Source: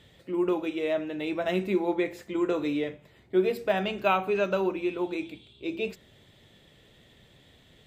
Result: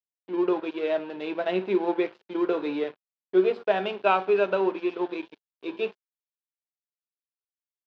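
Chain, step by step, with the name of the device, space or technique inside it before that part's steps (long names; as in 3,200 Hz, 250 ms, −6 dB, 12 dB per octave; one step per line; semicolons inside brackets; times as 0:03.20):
blown loudspeaker (dead-zone distortion −41 dBFS; loudspeaker in its box 220–4,300 Hz, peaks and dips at 410 Hz +6 dB, 1,200 Hz −6 dB, 2,000 Hz −6 dB)
dynamic equaliser 1,200 Hz, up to +7 dB, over −43 dBFS, Q 0.88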